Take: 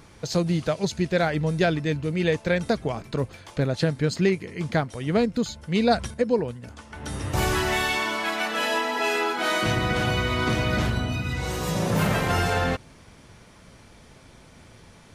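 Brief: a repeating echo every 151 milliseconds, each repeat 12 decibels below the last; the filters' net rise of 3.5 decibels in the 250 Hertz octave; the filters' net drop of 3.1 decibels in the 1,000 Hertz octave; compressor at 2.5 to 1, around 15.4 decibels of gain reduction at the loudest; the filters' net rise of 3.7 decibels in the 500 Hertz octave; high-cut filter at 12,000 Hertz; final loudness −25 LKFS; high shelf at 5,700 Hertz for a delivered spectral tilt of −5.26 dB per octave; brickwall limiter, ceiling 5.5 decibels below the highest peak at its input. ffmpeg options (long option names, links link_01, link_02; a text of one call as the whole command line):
ffmpeg -i in.wav -af "lowpass=12000,equalizer=frequency=250:width_type=o:gain=4,equalizer=frequency=500:width_type=o:gain=5,equalizer=frequency=1000:width_type=o:gain=-7,highshelf=frequency=5700:gain=-6.5,acompressor=threshold=-37dB:ratio=2.5,alimiter=level_in=2.5dB:limit=-24dB:level=0:latency=1,volume=-2.5dB,aecho=1:1:151|302|453:0.251|0.0628|0.0157,volume=11dB" out.wav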